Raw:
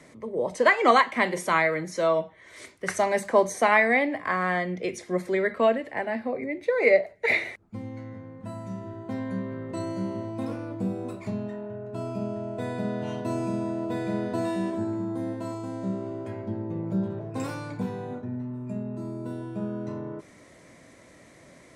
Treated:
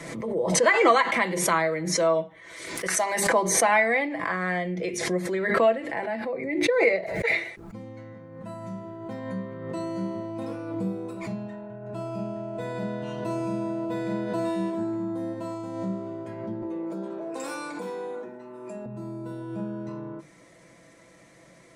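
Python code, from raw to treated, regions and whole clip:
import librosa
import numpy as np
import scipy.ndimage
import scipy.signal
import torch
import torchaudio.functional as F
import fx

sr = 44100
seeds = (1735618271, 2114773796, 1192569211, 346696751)

y = fx.chain(x, sr, fx.highpass(hz=370.0, slope=6),
    fx.high_shelf(hz=8000.0, db=7.5), at=(2.75, 3.27))
y = fx.chain(y, sr, fx.highpass(hz=280.0, slope=24),
    fx.peak_eq(hz=8500.0, db=5.5, octaves=0.93),
    fx.env_flatten(amount_pct=70), at=(16.62, 18.86))
y = fx.hum_notches(y, sr, base_hz=50, count=8)
y = y + 0.52 * np.pad(y, (int(6.0 * sr / 1000.0), 0))[:len(y)]
y = fx.pre_swell(y, sr, db_per_s=44.0)
y = y * librosa.db_to_amplitude(-2.5)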